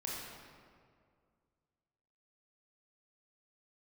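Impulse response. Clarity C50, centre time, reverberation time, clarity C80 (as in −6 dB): −1.5 dB, 112 ms, 2.1 s, 0.5 dB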